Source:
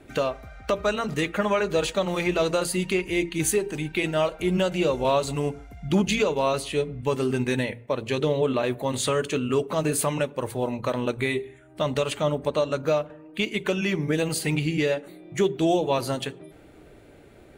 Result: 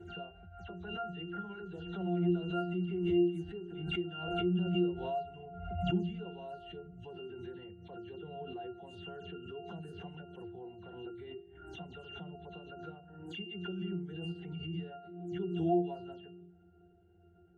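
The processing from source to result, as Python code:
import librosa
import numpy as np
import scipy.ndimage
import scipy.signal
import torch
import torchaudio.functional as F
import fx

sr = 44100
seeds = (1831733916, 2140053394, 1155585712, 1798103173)

y = fx.spec_delay(x, sr, highs='early', ms=106)
y = fx.octave_resonator(y, sr, note='F', decay_s=0.34)
y = fx.pre_swell(y, sr, db_per_s=47.0)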